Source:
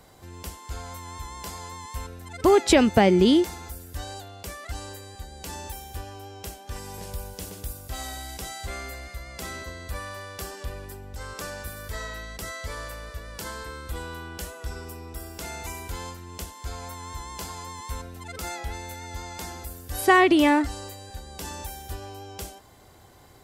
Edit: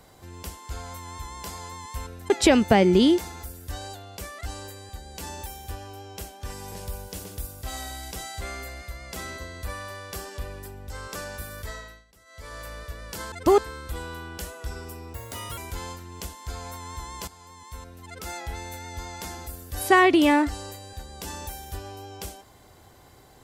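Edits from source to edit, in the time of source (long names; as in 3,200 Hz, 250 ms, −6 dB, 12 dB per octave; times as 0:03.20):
0:02.30–0:02.56: move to 0:13.58
0:11.84–0:12.98: duck −22 dB, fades 0.47 s
0:15.14–0:15.75: play speed 140%
0:17.45–0:18.80: fade in linear, from −14 dB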